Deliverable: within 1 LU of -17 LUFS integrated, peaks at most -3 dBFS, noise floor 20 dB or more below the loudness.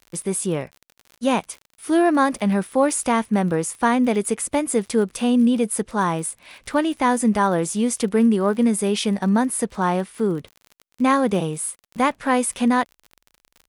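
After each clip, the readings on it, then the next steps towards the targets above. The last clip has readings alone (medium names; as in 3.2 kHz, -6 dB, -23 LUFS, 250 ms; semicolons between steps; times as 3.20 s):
tick rate 38 per s; loudness -21.0 LUFS; peak level -6.0 dBFS; loudness target -17.0 LUFS
-> de-click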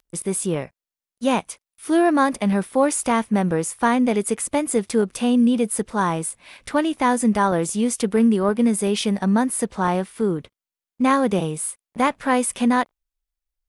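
tick rate 0.073 per s; loudness -21.0 LUFS; peak level -6.0 dBFS; loudness target -17.0 LUFS
-> trim +4 dB; peak limiter -3 dBFS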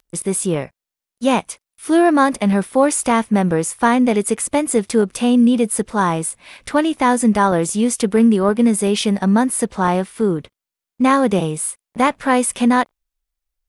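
loudness -17.0 LUFS; peak level -3.0 dBFS; noise floor -87 dBFS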